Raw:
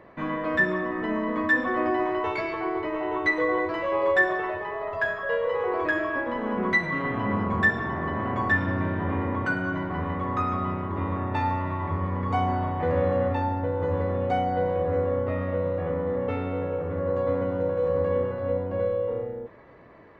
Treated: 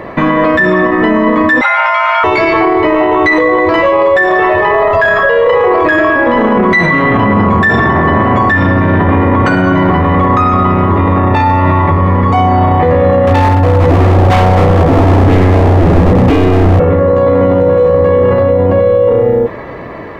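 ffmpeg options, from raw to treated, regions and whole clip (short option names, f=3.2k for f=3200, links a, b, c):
-filter_complex "[0:a]asettb=1/sr,asplit=3[a][b][c];[a]atrim=end=1.614[d];[b]atrim=start=1.61:end=2.24,asetpts=PTS-STARTPTS,afade=t=in:d=0.004:c=qsin,afade=t=out:st=0.626:d=0.004:c=qsin,highpass=740,afreqshift=300[e];[c]atrim=start=2.236[f];[d][e]acrossfade=d=0.004:c1=hsin:c2=qsin[g];[g][f]acrossfade=d=0.004:c1=qsin:c2=hsin,asettb=1/sr,asplit=3[h][i][j];[h]atrim=end=13.274[k];[i]atrim=start=13.27:end=16.8,asetpts=PTS-STARTPTS,afade=t=in:d=0.004:c=qsin,afade=t=out:st=3.526:d=0.004:c=qsin,asubboost=boost=9.5:cutoff=190,aeval=exprs='0.0944*(abs(mod(val(0)/0.0944+3,4)-2)-1)':c=same[l];[j]atrim=start=16.796[m];[k][l]acrossfade=d=0.004:c1=hsin:c2=qsin[n];[n][m]acrossfade=d=0.004:c1=qsin:c2=hsin,bandreject=f=1.5k:w=15,dynaudnorm=f=610:g=11:m=9dB,alimiter=level_in=26dB:limit=-1dB:release=50:level=0:latency=1,volume=-1dB"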